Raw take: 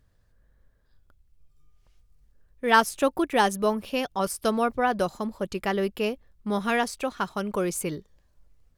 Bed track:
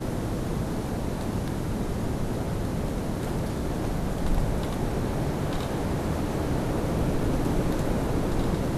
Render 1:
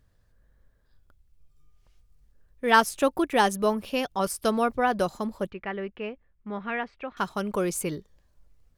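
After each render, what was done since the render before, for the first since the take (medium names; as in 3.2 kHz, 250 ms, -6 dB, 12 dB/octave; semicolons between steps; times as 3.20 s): 5.50–7.17 s: four-pole ladder low-pass 2.8 kHz, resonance 35%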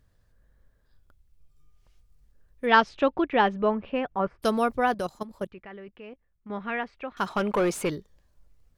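2.65–4.42 s: low-pass 4.6 kHz -> 1.9 kHz 24 dB/octave; 4.94–6.50 s: level held to a coarse grid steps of 14 dB; 7.26–7.90 s: overdrive pedal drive 19 dB, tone 1.7 kHz, clips at -15.5 dBFS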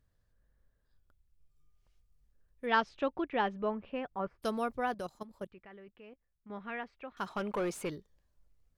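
trim -9.5 dB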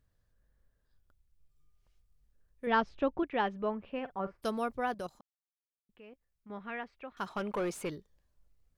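2.67–3.23 s: tilt EQ -2 dB/octave; 3.91–4.47 s: doubling 46 ms -14 dB; 5.21–5.89 s: mute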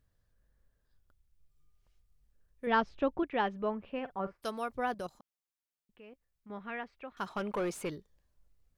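4.33–4.73 s: bass shelf 430 Hz -8.5 dB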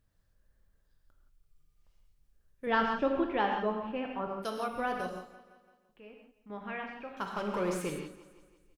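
feedback delay 169 ms, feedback 55%, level -17.5 dB; gated-style reverb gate 200 ms flat, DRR 1.5 dB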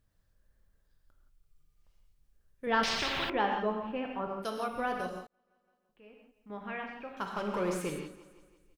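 2.83–3.30 s: spectrum-flattening compressor 10:1; 5.27–6.52 s: fade in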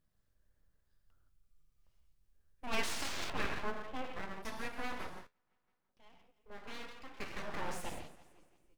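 feedback comb 85 Hz, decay 0.2 s, harmonics all, mix 60%; full-wave rectifier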